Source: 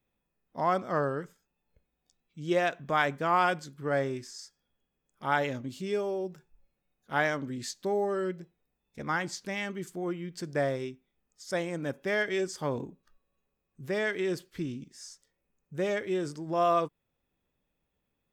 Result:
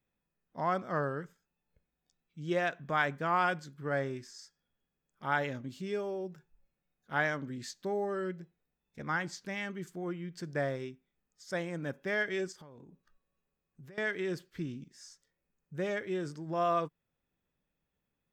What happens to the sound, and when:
12.52–13.98 compressor 8:1, threshold -46 dBFS
whole clip: fifteen-band EQ 160 Hz +4 dB, 1600 Hz +4 dB, 10000 Hz -5 dB; gain -5 dB

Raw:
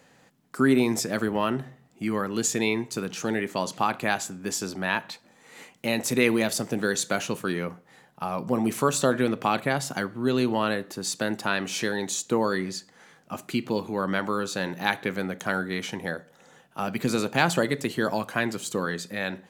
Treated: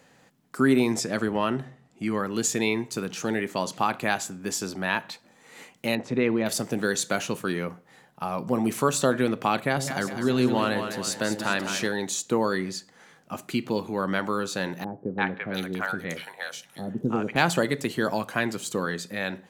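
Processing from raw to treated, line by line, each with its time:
0.92–2.25 LPF 10000 Hz
5.95–6.46 tape spacing loss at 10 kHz 31 dB
9.67–11.87 split-band echo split 560 Hz, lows 94 ms, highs 0.202 s, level -7.5 dB
14.84–17.36 three bands offset in time lows, mids, highs 0.34/0.7 s, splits 620/3000 Hz

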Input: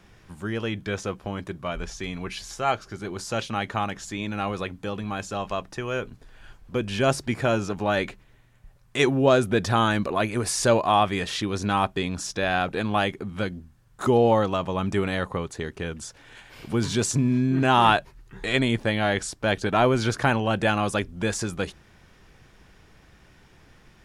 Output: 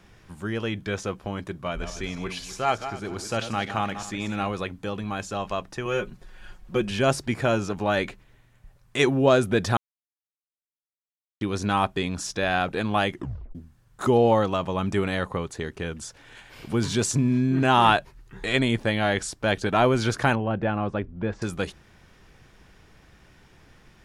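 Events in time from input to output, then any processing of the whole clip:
1.53–4.47 regenerating reverse delay 0.125 s, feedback 45%, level -10 dB
5.85–6.91 comb 5.5 ms, depth 73%
9.77–11.41 mute
13.13 tape stop 0.42 s
20.35–21.42 tape spacing loss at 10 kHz 44 dB

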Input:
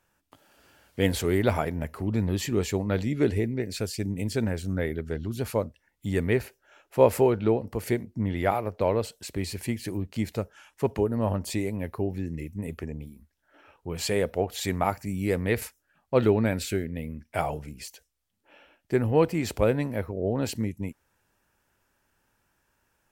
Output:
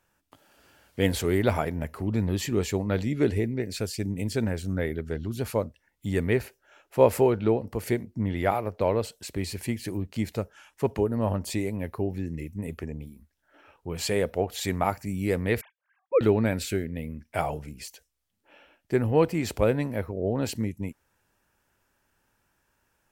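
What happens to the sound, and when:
15.61–16.21 sine-wave speech

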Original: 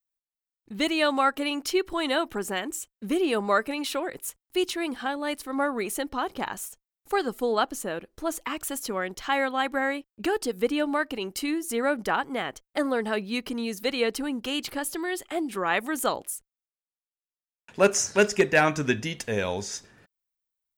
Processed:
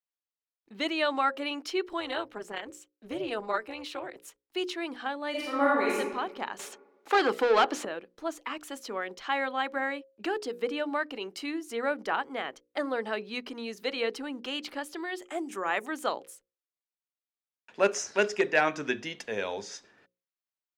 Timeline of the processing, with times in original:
2–4.25 AM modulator 220 Hz, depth 65%
5.3–5.95 reverb throw, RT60 1.2 s, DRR -6.5 dB
6.59–7.85 overdrive pedal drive 26 dB, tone 2700 Hz, clips at -10.5 dBFS
15.22–15.86 resonant high shelf 5400 Hz +7 dB, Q 3
whole clip: three-band isolator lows -16 dB, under 240 Hz, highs -15 dB, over 5900 Hz; notches 60/120/180/240/300/360/420/480/540 Hz; gain -3.5 dB

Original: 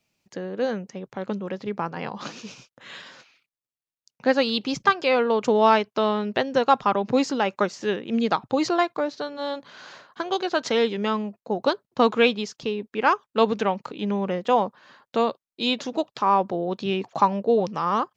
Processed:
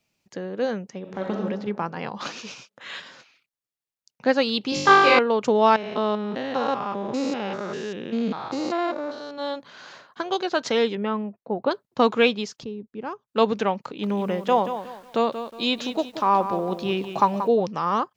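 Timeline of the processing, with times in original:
0.99–1.39 reverb throw, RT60 1.3 s, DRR -0.5 dB
2.2–3 overdrive pedal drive 10 dB, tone 5800 Hz, clips at -17.5 dBFS
4.7–5.19 flutter echo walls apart 3.5 m, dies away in 1.3 s
5.76–9.38 stepped spectrum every 0.2 s
10.95–11.71 air absorption 430 m
12.64–13.28 EQ curve 140 Hz 0 dB, 2100 Hz -20 dB, 3600 Hz -17 dB
13.79–17.48 lo-fi delay 0.182 s, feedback 35%, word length 8-bit, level -10 dB

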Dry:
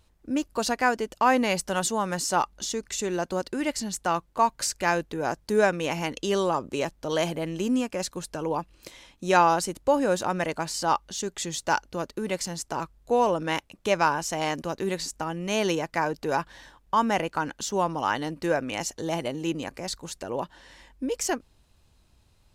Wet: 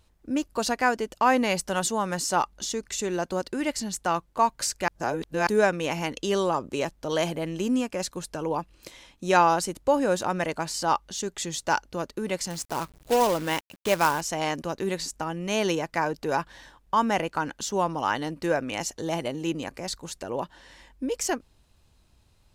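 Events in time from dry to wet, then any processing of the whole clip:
4.88–5.47 reverse
12.5–14.21 companded quantiser 4-bit

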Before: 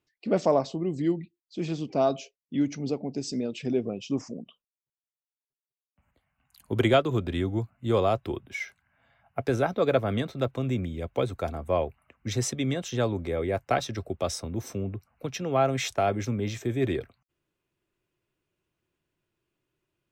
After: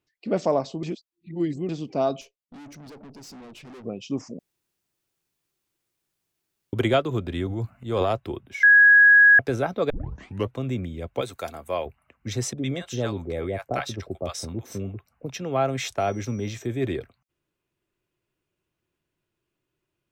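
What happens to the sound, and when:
0.83–1.69 reverse
2.21–3.85 tube stage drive 42 dB, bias 0.6
4.39–6.73 room tone
7.46–8.13 transient shaper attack -6 dB, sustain +11 dB
8.63–9.39 bleep 1660 Hz -10 dBFS
9.9 tape start 0.64 s
11.21–11.86 tilt +3 dB/oct
12.53–15.3 bands offset in time lows, highs 50 ms, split 790 Hz
15.99–16.64 whine 5800 Hz -53 dBFS

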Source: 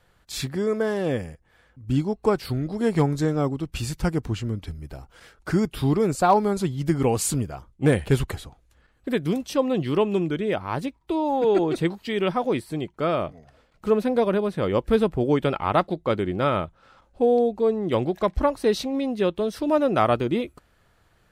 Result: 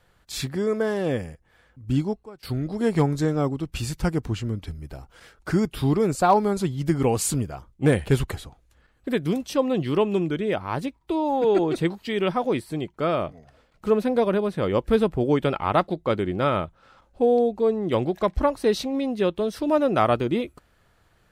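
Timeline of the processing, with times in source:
1.88–2.78 dip -21.5 dB, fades 0.35 s logarithmic

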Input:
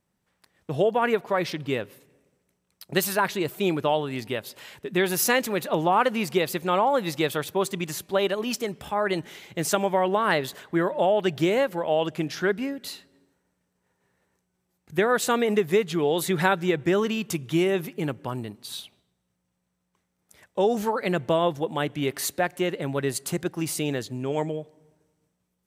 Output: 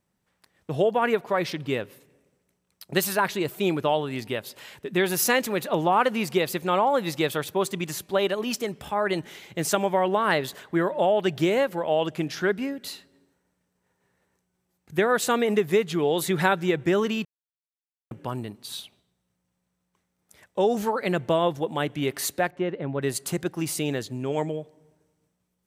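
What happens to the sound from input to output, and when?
17.25–18.11 mute
22.5–23.02 tape spacing loss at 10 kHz 31 dB

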